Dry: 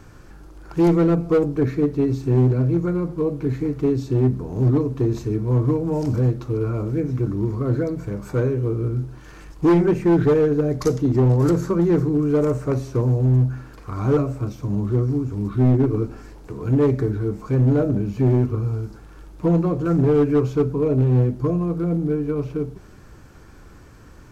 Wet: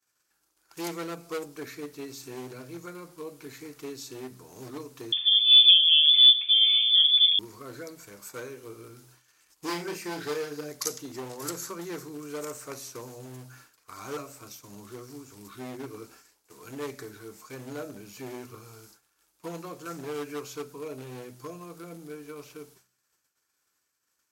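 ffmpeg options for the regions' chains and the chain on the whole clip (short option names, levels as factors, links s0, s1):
-filter_complex "[0:a]asettb=1/sr,asplit=3[s0][s1][s2];[s0]atrim=end=5.124[s3];[s1]atrim=start=5.12:end=7.39,asetpts=PTS-STARTPTS,afade=t=in:d=0.004:c=qsin,afade=t=out:st=2.266:d=0.004:c=qsin,aecho=1:1:6.7:0.46,atrim=end_sample=100107,lowpass=f=3100:t=q:w=0.5098,lowpass=f=3100:t=q:w=0.6013,lowpass=f=3100:t=q:w=0.9,lowpass=f=3100:t=q:w=2.563,afreqshift=-3600[s4];[s2]atrim=start=7.386[s5];[s3][s4]acrossfade=d=0.004:c1=hsin:c2=qsin[s6];[s6][s5]acrossfade=d=0.004:c1=qsin:c2=hsin,asettb=1/sr,asplit=3[s7][s8][s9];[s7]atrim=end=9.654[s10];[s8]atrim=start=9.65:end=10.71,asetpts=PTS-STARTPTS,afade=t=in:d=0.004:c=qsin,afade=t=out:st=1.056:d=0.004:c=qsin,highpass=86,equalizer=f=4900:w=5.4:g=8,asplit=2[s11][s12];[s12]adelay=34,volume=0.501[s13];[s11][s13]amix=inputs=2:normalize=0,atrim=end_sample=46746[s14];[s9]atrim=start=10.706[s15];[s10][s14]acrossfade=d=0.004:c1=hsin:c2=qsin[s16];[s16][s15]acrossfade=d=0.004:c1=qsin:c2=hsin,agate=range=0.0224:threshold=0.0282:ratio=3:detection=peak,aderivative,bandreject=f=62.32:t=h:w=4,bandreject=f=124.64:t=h:w=4,bandreject=f=186.96:t=h:w=4,volume=2.24"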